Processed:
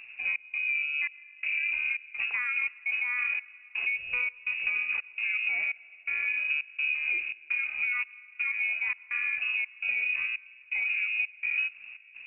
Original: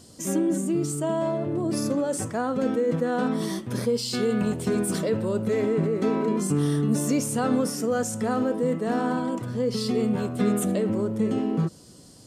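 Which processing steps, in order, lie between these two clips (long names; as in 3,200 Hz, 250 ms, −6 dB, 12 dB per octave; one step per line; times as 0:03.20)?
spectral tilt −2 dB per octave
downward compressor, threshold −27 dBFS, peak gain reduction 12.5 dB
gate pattern "xx.xxx..xxx.x" 84 BPM −60 dB
on a send at −20.5 dB: convolution reverb RT60 4.1 s, pre-delay 84 ms
on the sum: voice inversion scrambler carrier 2,700 Hz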